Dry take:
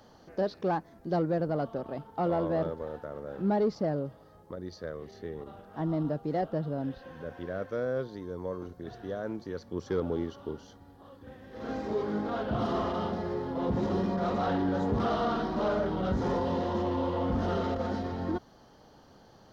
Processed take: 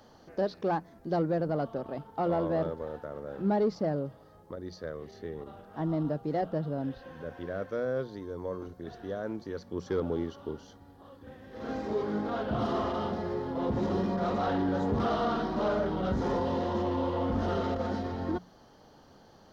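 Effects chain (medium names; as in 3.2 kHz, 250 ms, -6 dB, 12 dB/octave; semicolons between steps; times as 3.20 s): hum notches 60/120/180 Hz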